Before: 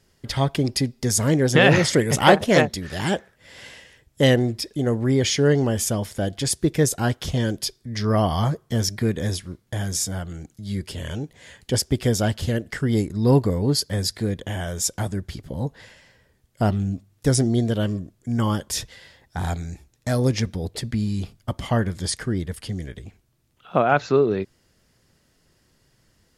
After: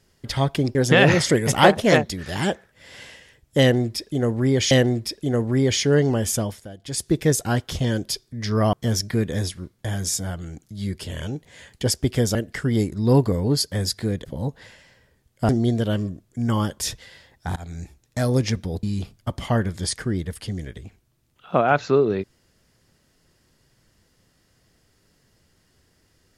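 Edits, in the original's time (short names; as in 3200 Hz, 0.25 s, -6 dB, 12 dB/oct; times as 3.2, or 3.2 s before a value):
0.75–1.39 cut
4.24–5.35 loop, 2 plays
5.93–6.62 dip -15 dB, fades 0.29 s
8.26–8.61 cut
12.23–12.53 cut
14.43–15.43 cut
16.67–17.39 cut
19.46–19.71 fade in, from -23.5 dB
20.73–21.04 cut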